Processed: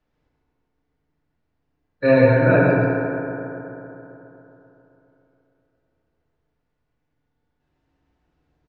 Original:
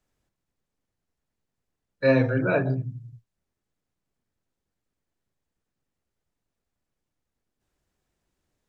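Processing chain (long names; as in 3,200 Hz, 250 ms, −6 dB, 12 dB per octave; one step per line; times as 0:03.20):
high-frequency loss of the air 210 metres
on a send: single-tap delay 133 ms −4.5 dB
on the sum: feedback delay network reverb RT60 3.4 s, high-frequency decay 0.35×, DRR −3 dB
level +3.5 dB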